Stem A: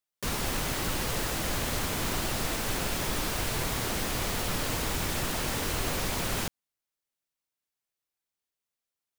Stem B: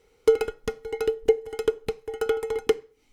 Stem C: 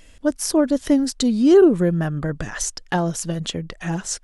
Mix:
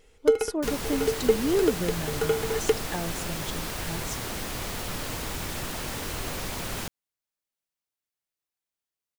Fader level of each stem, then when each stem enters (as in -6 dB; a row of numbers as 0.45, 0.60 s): -2.5, -1.5, -12.0 dB; 0.40, 0.00, 0.00 s